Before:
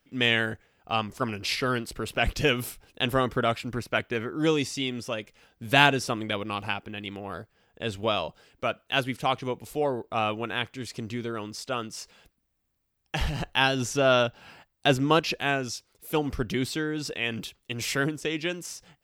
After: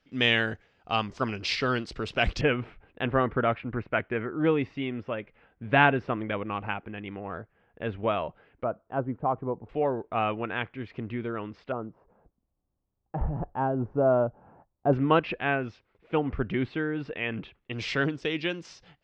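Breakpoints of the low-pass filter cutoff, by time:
low-pass filter 24 dB per octave
5,700 Hz
from 0:02.41 2,300 Hz
from 0:08.64 1,100 Hz
from 0:09.69 2,500 Hz
from 0:11.72 1,000 Hz
from 0:14.93 2,500 Hz
from 0:17.73 4,400 Hz

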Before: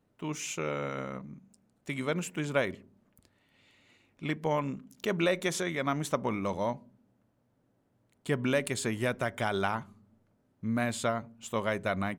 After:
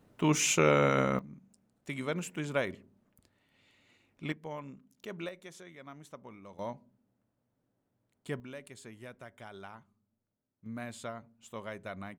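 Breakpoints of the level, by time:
+9 dB
from 0:01.19 −3 dB
from 0:04.32 −12 dB
from 0:05.29 −18.5 dB
from 0:06.59 −7.5 dB
from 0:08.40 −17.5 dB
from 0:10.66 −11 dB

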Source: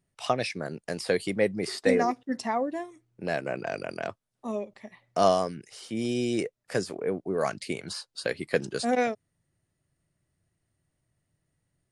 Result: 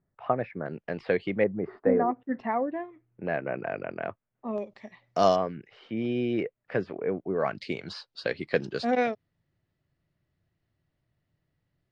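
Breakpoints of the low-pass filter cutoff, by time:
low-pass filter 24 dB per octave
1,700 Hz
from 0:00.66 2,900 Hz
from 0:01.44 1,400 Hz
from 0:02.20 2,400 Hz
from 0:04.58 5,800 Hz
from 0:05.36 2,800 Hz
from 0:07.55 4,600 Hz

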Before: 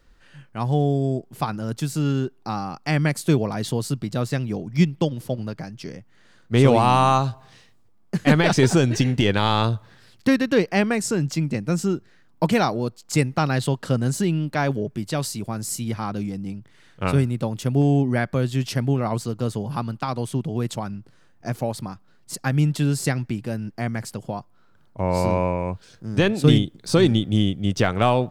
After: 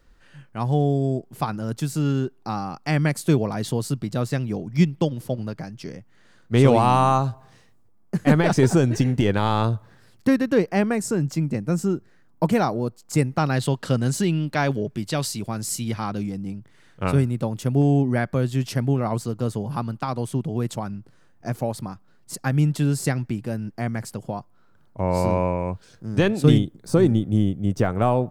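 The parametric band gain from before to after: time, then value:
parametric band 3,500 Hz 1.8 octaves
0:06.73 −2.5 dB
0:07.17 −8.5 dB
0:13.14 −8.5 dB
0:13.84 +2.5 dB
0:16.01 +2.5 dB
0:16.44 −4 dB
0:26.44 −4 dB
0:26.92 −15 dB

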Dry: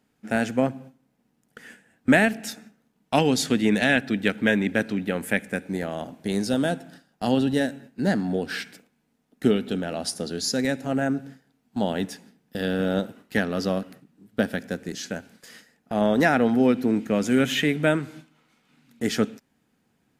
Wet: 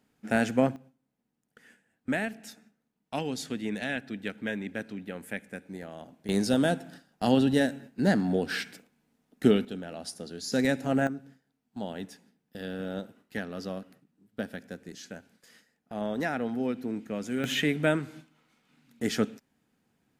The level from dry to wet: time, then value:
−1.5 dB
from 0:00.76 −12 dB
from 0:06.29 −1 dB
from 0:09.65 −10 dB
from 0:10.52 −1 dB
from 0:11.07 −11 dB
from 0:17.44 −4 dB

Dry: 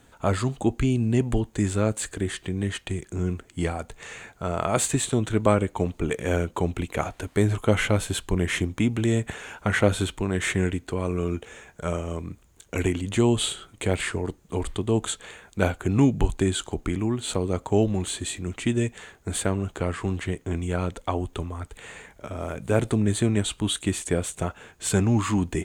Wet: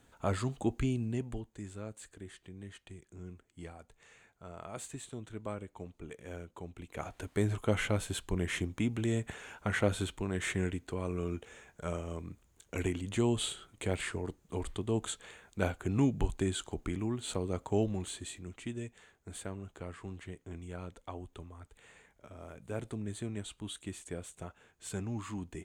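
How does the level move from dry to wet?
0:00.85 −8.5 dB
0:01.61 −20 dB
0:06.75 −20 dB
0:07.17 −9 dB
0:17.82 −9 dB
0:18.80 −16.5 dB

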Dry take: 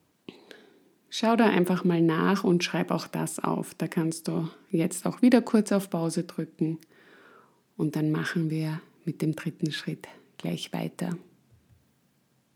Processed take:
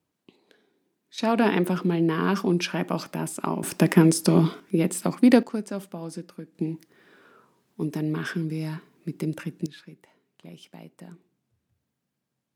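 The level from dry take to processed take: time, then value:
−11 dB
from 0:01.18 0 dB
from 0:03.63 +10.5 dB
from 0:04.60 +3 dB
from 0:05.43 −7.5 dB
from 0:06.55 −1 dB
from 0:09.66 −13.5 dB

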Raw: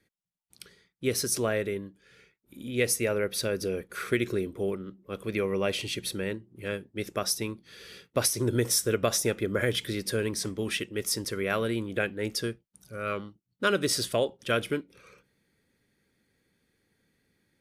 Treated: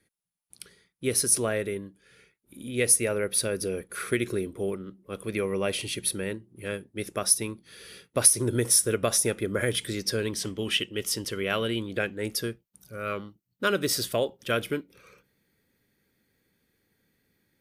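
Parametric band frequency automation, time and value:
parametric band +13 dB 0.22 octaves
0:09.78 10,000 Hz
0:10.38 3,000 Hz
0:11.77 3,000 Hz
0:12.46 14,000 Hz

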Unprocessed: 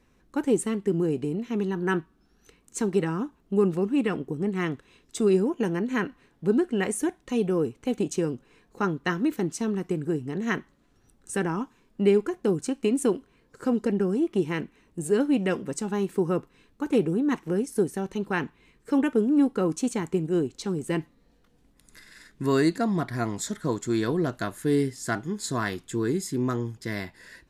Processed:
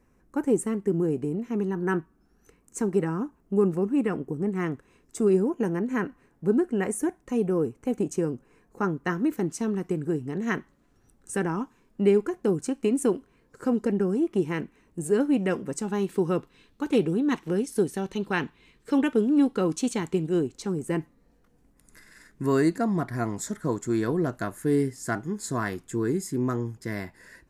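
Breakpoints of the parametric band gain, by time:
parametric band 3,600 Hz 1 octave
0:08.96 −13.5 dB
0:09.57 −5.5 dB
0:15.71 −5.5 dB
0:16.22 +5 dB
0:20.29 +5 dB
0:20.46 −3 dB
0:20.93 −9.5 dB

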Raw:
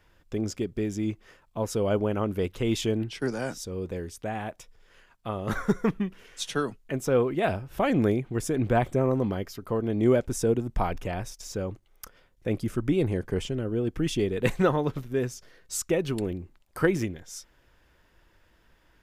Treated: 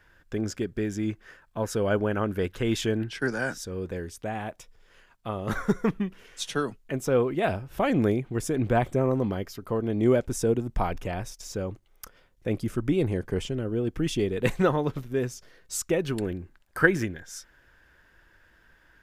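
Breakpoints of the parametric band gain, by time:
parametric band 1,600 Hz 0.39 octaves
0:03.76 +11.5 dB
0:04.25 +0.5 dB
0:15.87 +0.5 dB
0:16.34 +12 dB

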